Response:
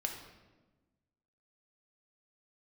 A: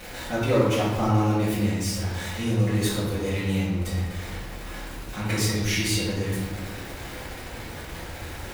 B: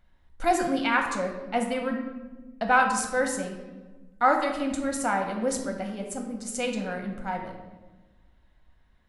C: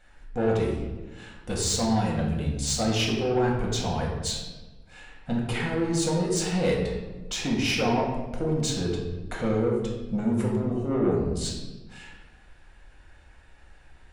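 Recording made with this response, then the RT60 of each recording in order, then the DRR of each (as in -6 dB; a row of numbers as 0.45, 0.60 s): B; 1.2, 1.2, 1.2 s; -9.0, 2.0, -2.5 dB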